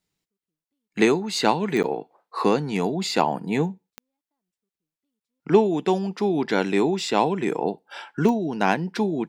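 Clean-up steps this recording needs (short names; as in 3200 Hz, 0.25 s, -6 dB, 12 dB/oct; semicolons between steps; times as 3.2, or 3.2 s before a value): de-click; interpolate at 1.83/5.2, 9.5 ms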